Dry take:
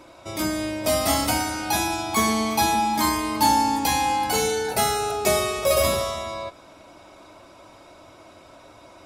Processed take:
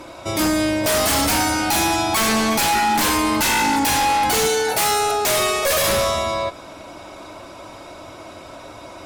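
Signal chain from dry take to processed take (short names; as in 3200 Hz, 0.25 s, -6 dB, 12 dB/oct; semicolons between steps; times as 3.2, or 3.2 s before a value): 4.47–5.88 low shelf 280 Hz -10.5 dB; sine folder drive 14 dB, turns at -7 dBFS; gain -8 dB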